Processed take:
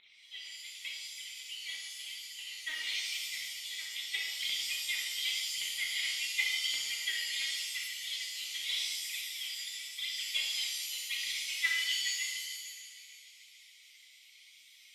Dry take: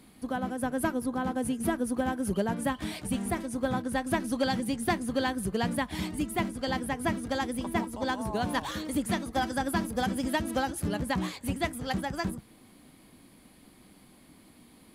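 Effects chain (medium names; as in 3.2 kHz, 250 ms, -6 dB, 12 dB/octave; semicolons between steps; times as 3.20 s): 7.77–9.82 s: compressor with a negative ratio -30 dBFS, ratio -0.5; brick-wall FIR band-pass 1.9–4.2 kHz; multi-head delay 151 ms, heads first and third, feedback 51%, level -16 dB; phaser 0.89 Hz, delay 4 ms, feedback 73%; pitch-shifted reverb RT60 1.1 s, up +7 st, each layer -2 dB, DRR -2.5 dB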